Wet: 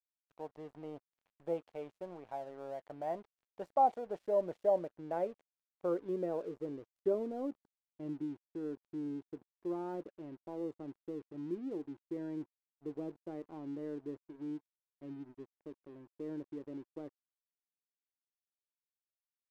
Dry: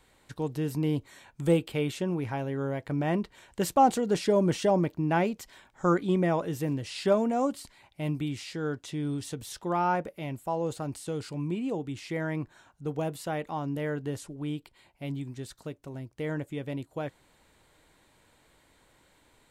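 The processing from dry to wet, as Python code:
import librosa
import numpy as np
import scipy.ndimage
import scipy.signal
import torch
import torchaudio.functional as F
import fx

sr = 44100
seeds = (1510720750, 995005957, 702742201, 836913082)

y = fx.filter_sweep_bandpass(x, sr, from_hz=680.0, to_hz=340.0, start_s=4.04, end_s=7.77, q=3.3)
y = np.sign(y) * np.maximum(np.abs(y) - 10.0 ** (-57.0 / 20.0), 0.0)
y = y * 10.0 ** (-2.5 / 20.0)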